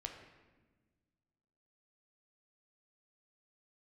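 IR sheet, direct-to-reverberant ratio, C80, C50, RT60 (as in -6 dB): 2.5 dB, 7.5 dB, 6.0 dB, 1.3 s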